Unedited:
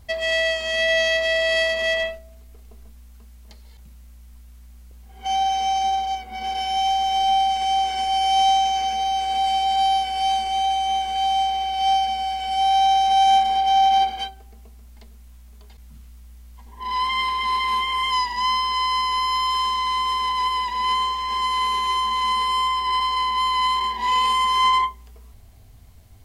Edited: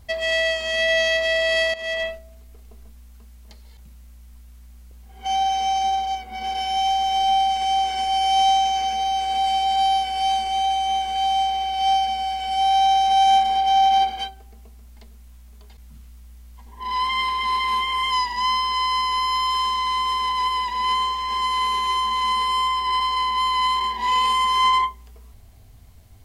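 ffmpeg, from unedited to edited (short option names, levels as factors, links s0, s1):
-filter_complex "[0:a]asplit=2[s0][s1];[s0]atrim=end=1.74,asetpts=PTS-STARTPTS,afade=t=out:st=1.736:d=0.004:c=hsin:silence=0.237137[s2];[s1]atrim=start=1.74,asetpts=PTS-STARTPTS,afade=t=in:d=0.36:silence=0.237137[s3];[s2][s3]concat=n=2:v=0:a=1"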